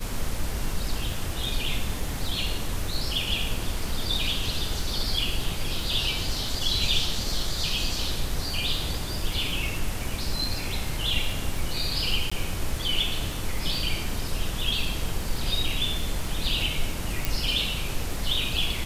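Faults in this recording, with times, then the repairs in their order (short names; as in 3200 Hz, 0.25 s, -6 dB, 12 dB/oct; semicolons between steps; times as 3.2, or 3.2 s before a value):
crackle 57/s -33 dBFS
12.3–12.31 gap 15 ms
17.25 pop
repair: de-click; interpolate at 12.3, 15 ms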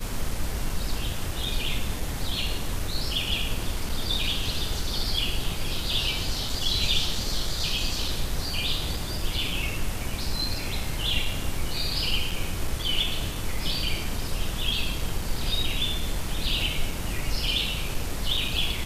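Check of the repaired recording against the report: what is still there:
none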